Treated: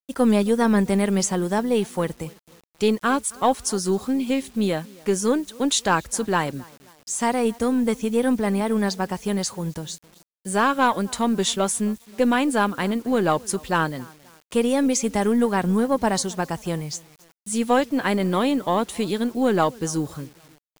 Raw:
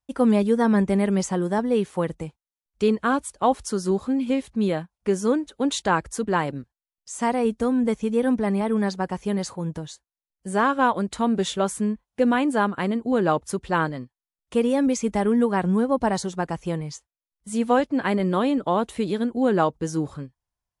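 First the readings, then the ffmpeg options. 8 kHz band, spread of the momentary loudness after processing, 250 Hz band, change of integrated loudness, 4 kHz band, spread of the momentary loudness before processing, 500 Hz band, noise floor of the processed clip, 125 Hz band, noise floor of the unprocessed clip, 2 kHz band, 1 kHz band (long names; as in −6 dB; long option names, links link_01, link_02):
+8.5 dB, 10 LU, +0.5 dB, +1.0 dB, +6.0 dB, 9 LU, +0.5 dB, −60 dBFS, +0.5 dB, below −85 dBFS, +2.0 dB, +1.0 dB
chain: -filter_complex "[0:a]asplit=2[link_01][link_02];[link_02]adelay=266,lowpass=frequency=3400:poles=1,volume=-24dB,asplit=2[link_03][link_04];[link_04]adelay=266,lowpass=frequency=3400:poles=1,volume=0.41,asplit=2[link_05][link_06];[link_06]adelay=266,lowpass=frequency=3400:poles=1,volume=0.41[link_07];[link_03][link_05][link_07]amix=inputs=3:normalize=0[link_08];[link_01][link_08]amix=inputs=2:normalize=0,aeval=exprs='0.447*(cos(1*acos(clip(val(0)/0.447,-1,1)))-cos(1*PI/2))+0.0178*(cos(4*acos(clip(val(0)/0.447,-1,1)))-cos(4*PI/2))+0.00316*(cos(5*acos(clip(val(0)/0.447,-1,1)))-cos(5*PI/2))':channel_layout=same,acrusher=bits=8:mix=0:aa=0.000001,highshelf=frequency=2900:gain=9"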